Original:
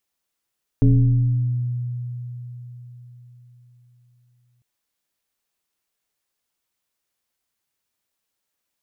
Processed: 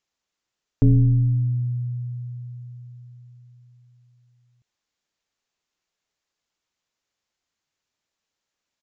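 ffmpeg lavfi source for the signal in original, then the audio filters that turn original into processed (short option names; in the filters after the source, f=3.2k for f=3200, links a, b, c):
-f lavfi -i "aevalsrc='0.316*pow(10,-3*t/4.44)*sin(2*PI*122*t+1.1*pow(10,-3*t/1.83)*sin(2*PI*1.24*122*t))':d=3.8:s=44100"
-af "aresample=16000,aresample=44100"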